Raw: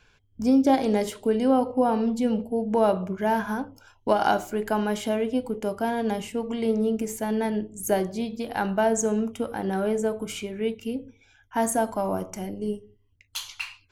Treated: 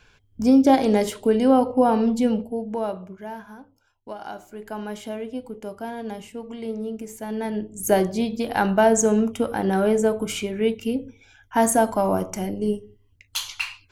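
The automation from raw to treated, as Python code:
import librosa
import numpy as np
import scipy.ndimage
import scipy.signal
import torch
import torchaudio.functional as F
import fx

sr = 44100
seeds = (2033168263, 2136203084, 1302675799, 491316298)

y = fx.gain(x, sr, db=fx.line((2.23, 4.0), (2.76, -5.0), (3.52, -14.0), (4.27, -14.0), (4.87, -6.0), (7.11, -6.0), (7.99, 5.5)))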